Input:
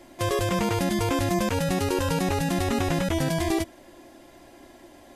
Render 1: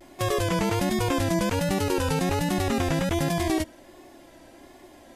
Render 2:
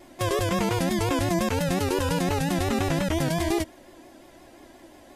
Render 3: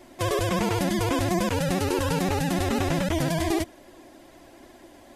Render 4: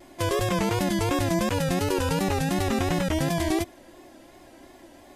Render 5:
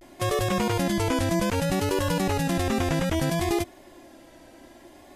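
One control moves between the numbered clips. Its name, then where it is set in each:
vibrato, rate: 1.3, 5.7, 16, 2.8, 0.62 Hz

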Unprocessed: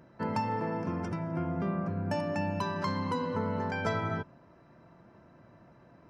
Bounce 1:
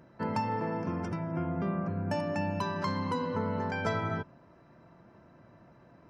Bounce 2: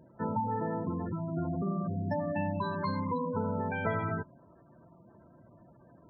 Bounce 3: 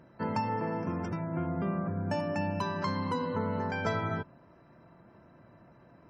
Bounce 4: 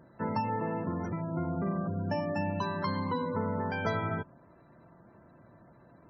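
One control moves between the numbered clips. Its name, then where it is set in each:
spectral gate, under each frame's peak: -55, -15, -40, -25 dB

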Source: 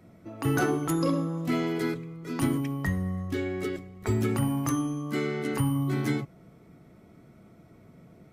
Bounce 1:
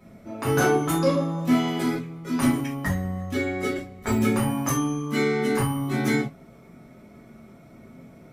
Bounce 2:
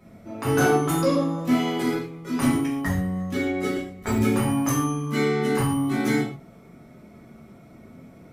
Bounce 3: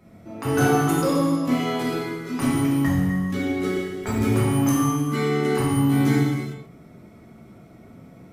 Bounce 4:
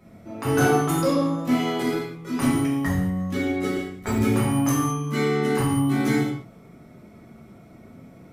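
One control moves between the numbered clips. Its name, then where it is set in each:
non-linear reverb, gate: 0.1, 0.17, 0.48, 0.25 s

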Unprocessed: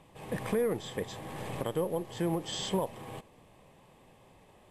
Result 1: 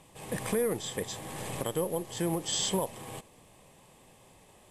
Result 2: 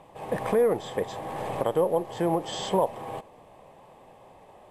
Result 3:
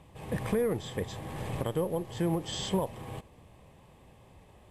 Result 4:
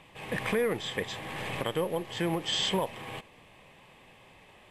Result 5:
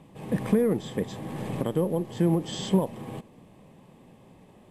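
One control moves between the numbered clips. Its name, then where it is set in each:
bell, frequency: 8500, 720, 64, 2400, 210 Hz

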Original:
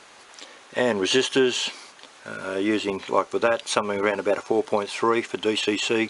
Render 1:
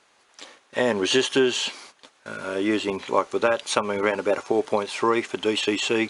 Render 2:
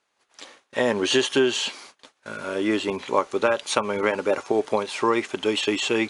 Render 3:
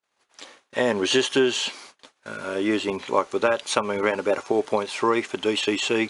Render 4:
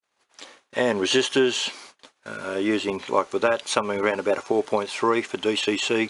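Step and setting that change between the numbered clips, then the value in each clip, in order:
gate, range: -12, -25, -42, -57 dB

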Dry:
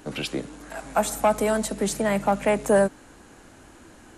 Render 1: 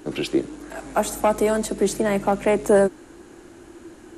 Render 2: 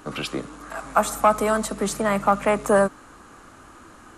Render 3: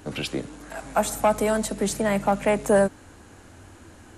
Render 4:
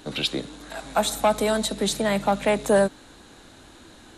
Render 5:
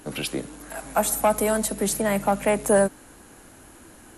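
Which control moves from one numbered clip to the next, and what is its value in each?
bell, frequency: 350, 1200, 91, 3800, 11000 Hz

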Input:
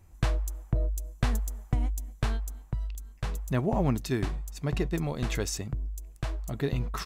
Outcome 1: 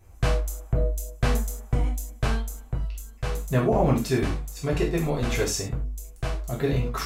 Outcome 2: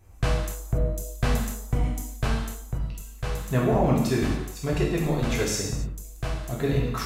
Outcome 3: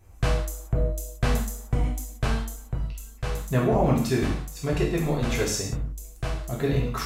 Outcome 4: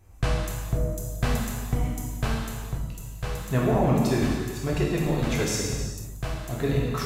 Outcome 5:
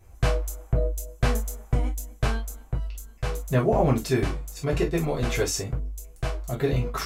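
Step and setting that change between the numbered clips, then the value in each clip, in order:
non-linear reverb, gate: 130, 310, 210, 530, 80 ms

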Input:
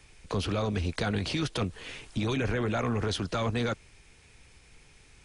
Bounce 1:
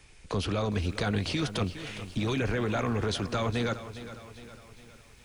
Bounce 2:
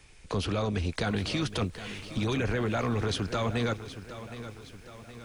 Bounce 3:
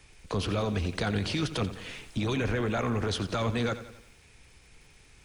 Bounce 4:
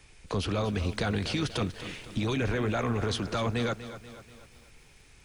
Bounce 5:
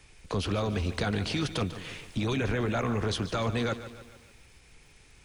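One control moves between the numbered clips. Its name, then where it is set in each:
lo-fi delay, time: 410, 767, 88, 242, 146 ms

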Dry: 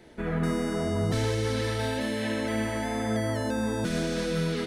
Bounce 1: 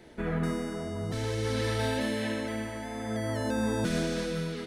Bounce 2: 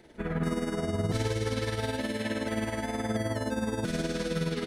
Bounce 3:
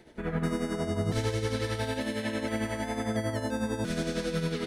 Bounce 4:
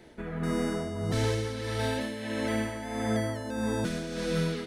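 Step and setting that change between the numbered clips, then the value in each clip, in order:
tremolo, rate: 0.53, 19, 11, 1.6 Hz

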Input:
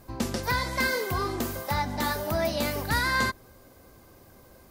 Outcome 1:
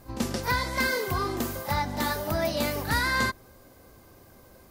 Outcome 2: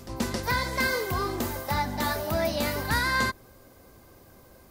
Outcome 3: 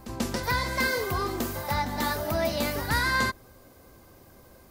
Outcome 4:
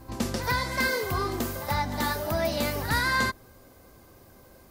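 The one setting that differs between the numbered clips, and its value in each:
pre-echo, time: 34, 270, 139, 83 ms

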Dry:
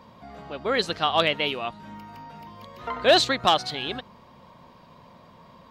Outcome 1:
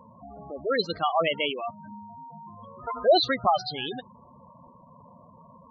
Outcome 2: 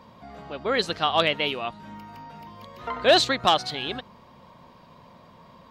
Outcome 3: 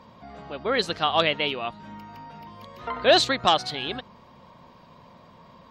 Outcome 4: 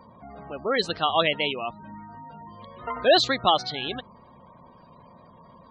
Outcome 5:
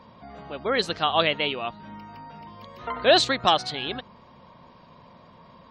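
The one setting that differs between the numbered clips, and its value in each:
spectral gate, under each frame's peak: -10, -60, -45, -20, -35 dB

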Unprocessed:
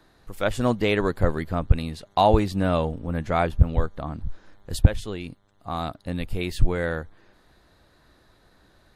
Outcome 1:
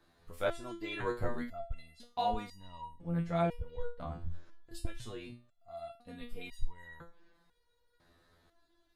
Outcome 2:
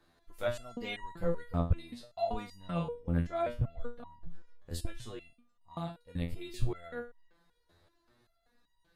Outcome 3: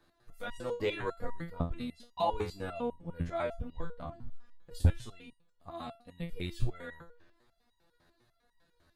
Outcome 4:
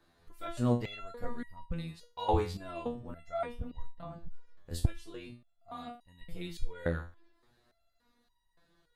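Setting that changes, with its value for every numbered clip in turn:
stepped resonator, rate: 2, 5.2, 10, 3.5 Hz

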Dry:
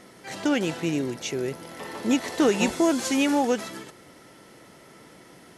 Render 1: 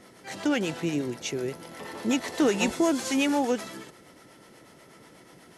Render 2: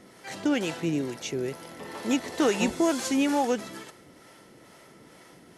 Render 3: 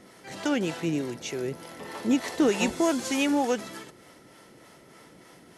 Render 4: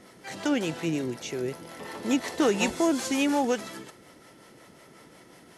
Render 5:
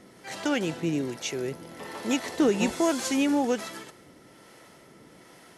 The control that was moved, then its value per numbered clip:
harmonic tremolo, rate: 8.2, 2.2, 3.3, 5.5, 1.2 Hz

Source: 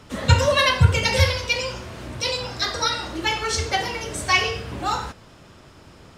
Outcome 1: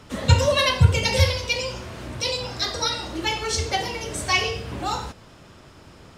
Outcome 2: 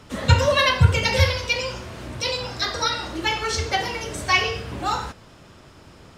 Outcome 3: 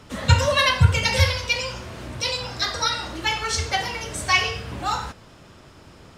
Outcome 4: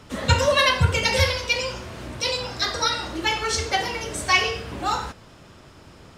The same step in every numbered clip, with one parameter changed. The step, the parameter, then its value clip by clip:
dynamic EQ, frequency: 1500, 8800, 370, 110 Hz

